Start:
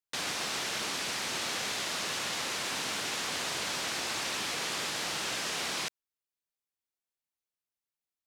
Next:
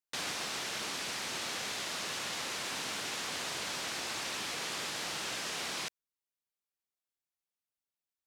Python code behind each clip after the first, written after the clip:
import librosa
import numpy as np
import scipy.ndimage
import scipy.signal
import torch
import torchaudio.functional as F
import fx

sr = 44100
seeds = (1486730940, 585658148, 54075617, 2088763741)

y = fx.rider(x, sr, range_db=10, speed_s=0.5)
y = y * librosa.db_to_amplitude(-3.5)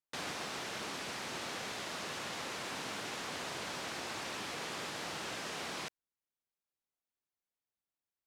y = fx.high_shelf(x, sr, hz=2000.0, db=-8.5)
y = y * librosa.db_to_amplitude(1.0)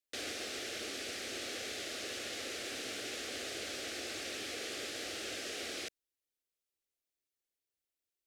y = fx.fixed_phaser(x, sr, hz=400.0, stages=4)
y = y * librosa.db_to_amplitude(2.5)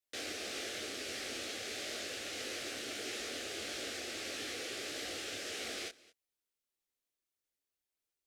y = x + 10.0 ** (-21.5 / 20.0) * np.pad(x, (int(214 * sr / 1000.0), 0))[:len(x)]
y = fx.detune_double(y, sr, cents=55)
y = y * librosa.db_to_amplitude(3.5)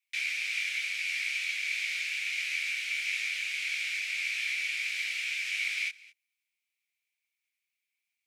y = fx.highpass_res(x, sr, hz=2300.0, q=11.0)